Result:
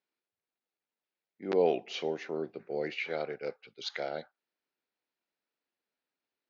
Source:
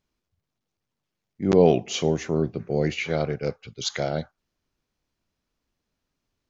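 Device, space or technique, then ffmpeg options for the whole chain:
phone earpiece: -af "highpass=440,equalizer=frequency=630:width_type=q:width=4:gain=-3,equalizer=frequency=1100:width_type=q:width=4:gain=-6,equalizer=frequency=3200:width_type=q:width=4:gain=-4,lowpass=frequency=4300:width=0.5412,lowpass=frequency=4300:width=1.3066,volume=-5dB"

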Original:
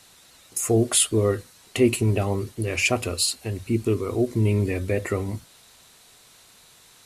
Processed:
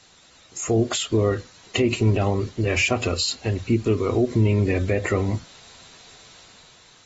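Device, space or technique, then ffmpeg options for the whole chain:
low-bitrate web radio: -af "dynaudnorm=framelen=270:gausssize=7:maxgain=6dB,alimiter=limit=-11dB:level=0:latency=1:release=104" -ar 44100 -c:a aac -b:a 24k

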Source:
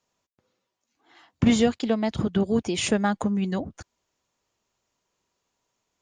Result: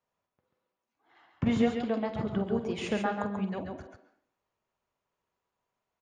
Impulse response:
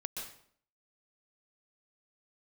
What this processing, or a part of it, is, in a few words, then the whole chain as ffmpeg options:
filtered reverb send: -filter_complex "[0:a]lowpass=frequency=1800:poles=1,aecho=1:1:47|137|145:0.282|0.562|0.119,asplit=2[link_01][link_02];[link_02]highpass=frequency=280:width=0.5412,highpass=frequency=280:width=1.3066,lowpass=3400[link_03];[1:a]atrim=start_sample=2205[link_04];[link_03][link_04]afir=irnorm=-1:irlink=0,volume=-4dB[link_05];[link_01][link_05]amix=inputs=2:normalize=0,volume=-7.5dB"

